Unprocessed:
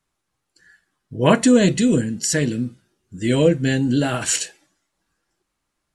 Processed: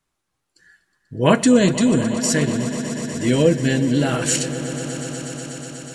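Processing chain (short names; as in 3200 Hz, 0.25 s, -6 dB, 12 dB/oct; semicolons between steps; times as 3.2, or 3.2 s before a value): swelling echo 0.122 s, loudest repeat 5, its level -16 dB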